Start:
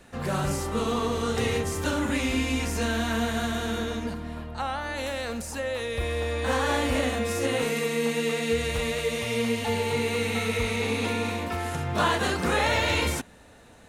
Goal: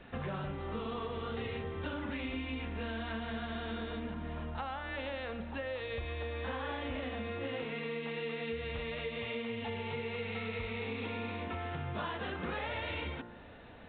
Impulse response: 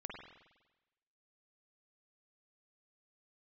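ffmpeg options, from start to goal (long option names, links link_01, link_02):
-af "bandreject=frequency=58.63:width_type=h:width=4,bandreject=frequency=117.26:width_type=h:width=4,bandreject=frequency=175.89:width_type=h:width=4,bandreject=frequency=234.52:width_type=h:width=4,bandreject=frequency=293.15:width_type=h:width=4,bandreject=frequency=351.78:width_type=h:width=4,bandreject=frequency=410.41:width_type=h:width=4,bandreject=frequency=469.04:width_type=h:width=4,bandreject=frequency=527.67:width_type=h:width=4,bandreject=frequency=586.3:width_type=h:width=4,bandreject=frequency=644.93:width_type=h:width=4,bandreject=frequency=703.56:width_type=h:width=4,bandreject=frequency=762.19:width_type=h:width=4,bandreject=frequency=820.82:width_type=h:width=4,bandreject=frequency=879.45:width_type=h:width=4,bandreject=frequency=938.08:width_type=h:width=4,bandreject=frequency=996.71:width_type=h:width=4,bandreject=frequency=1055.34:width_type=h:width=4,bandreject=frequency=1113.97:width_type=h:width=4,bandreject=frequency=1172.6:width_type=h:width=4,bandreject=frequency=1231.23:width_type=h:width=4,bandreject=frequency=1289.86:width_type=h:width=4,bandreject=frequency=1348.49:width_type=h:width=4,bandreject=frequency=1407.12:width_type=h:width=4,bandreject=frequency=1465.75:width_type=h:width=4,bandreject=frequency=1524.38:width_type=h:width=4,bandreject=frequency=1583.01:width_type=h:width=4,bandreject=frequency=1641.64:width_type=h:width=4,bandreject=frequency=1700.27:width_type=h:width=4,bandreject=frequency=1758.9:width_type=h:width=4,bandreject=frequency=1817.53:width_type=h:width=4,bandreject=frequency=1876.16:width_type=h:width=4,bandreject=frequency=1934.79:width_type=h:width=4,acompressor=threshold=-36dB:ratio=6" -ar 8000 -c:a pcm_mulaw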